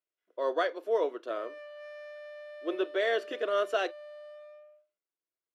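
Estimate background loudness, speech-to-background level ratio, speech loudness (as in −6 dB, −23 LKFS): −46.5 LKFS, 15.0 dB, −31.5 LKFS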